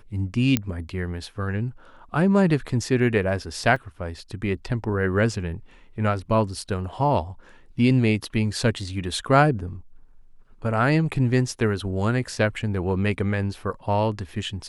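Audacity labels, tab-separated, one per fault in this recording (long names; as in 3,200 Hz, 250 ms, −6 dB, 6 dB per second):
0.570000	0.570000	click −6 dBFS
3.760000	3.760000	drop-out 3.4 ms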